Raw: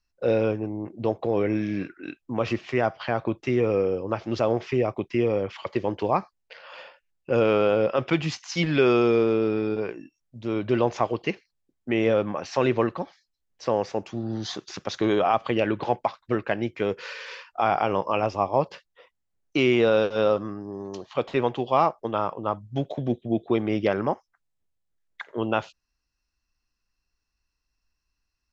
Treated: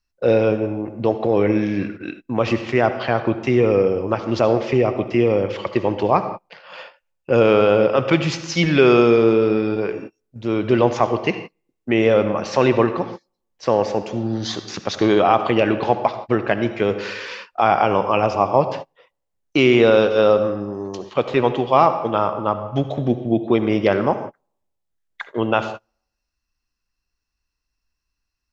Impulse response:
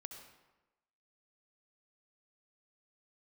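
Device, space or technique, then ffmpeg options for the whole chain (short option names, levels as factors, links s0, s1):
keyed gated reverb: -filter_complex "[0:a]asplit=3[s0][s1][s2];[1:a]atrim=start_sample=2205[s3];[s1][s3]afir=irnorm=-1:irlink=0[s4];[s2]apad=whole_len=1258018[s5];[s4][s5]sidechaingate=range=0.0178:threshold=0.00708:ratio=16:detection=peak,volume=2.11[s6];[s0][s6]amix=inputs=2:normalize=0"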